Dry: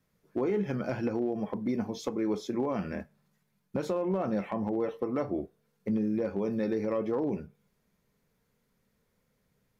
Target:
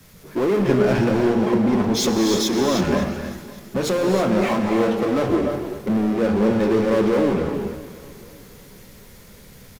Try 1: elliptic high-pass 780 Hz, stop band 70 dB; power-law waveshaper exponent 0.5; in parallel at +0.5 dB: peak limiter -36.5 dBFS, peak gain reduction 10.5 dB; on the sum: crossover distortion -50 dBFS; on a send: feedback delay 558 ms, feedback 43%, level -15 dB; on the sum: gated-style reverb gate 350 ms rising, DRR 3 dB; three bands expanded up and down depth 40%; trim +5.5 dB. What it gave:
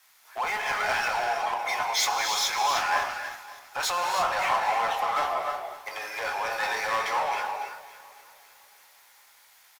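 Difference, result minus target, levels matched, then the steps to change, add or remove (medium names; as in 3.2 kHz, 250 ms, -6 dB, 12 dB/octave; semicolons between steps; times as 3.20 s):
1 kHz band +10.5 dB
remove: elliptic high-pass 780 Hz, stop band 70 dB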